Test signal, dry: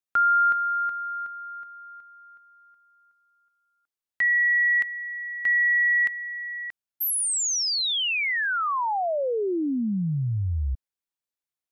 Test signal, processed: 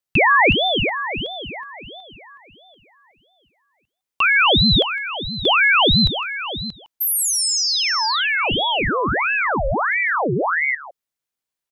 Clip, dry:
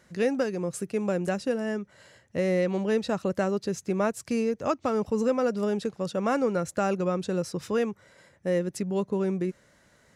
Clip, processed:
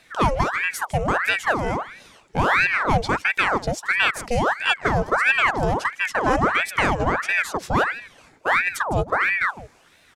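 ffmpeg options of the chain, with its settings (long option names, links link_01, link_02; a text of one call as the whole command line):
ffmpeg -i in.wav -filter_complex "[0:a]asplit=2[link_01][link_02];[link_02]aecho=0:1:158:0.158[link_03];[link_01][link_03]amix=inputs=2:normalize=0,aeval=exprs='val(0)*sin(2*PI*1200*n/s+1200*0.8/1.5*sin(2*PI*1.5*n/s))':channel_layout=same,volume=8.5dB" out.wav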